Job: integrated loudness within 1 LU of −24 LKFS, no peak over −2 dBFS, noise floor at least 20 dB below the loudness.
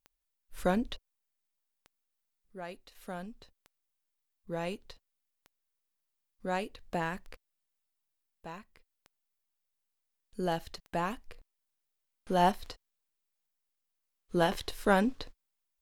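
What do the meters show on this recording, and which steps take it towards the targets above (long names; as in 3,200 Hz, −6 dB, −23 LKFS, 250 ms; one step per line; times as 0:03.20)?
number of clicks 9; integrated loudness −33.5 LKFS; sample peak −12.5 dBFS; target loudness −24.0 LKFS
→ click removal
level +9.5 dB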